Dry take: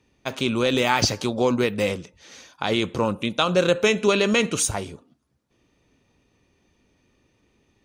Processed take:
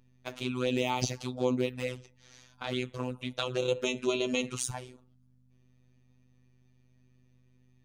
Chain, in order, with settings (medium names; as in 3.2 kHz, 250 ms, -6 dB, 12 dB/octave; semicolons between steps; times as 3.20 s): touch-sensitive flanger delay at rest 8.6 ms, full sweep at -16.5 dBFS; hum 50 Hz, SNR 27 dB; robot voice 126 Hz; trim -6 dB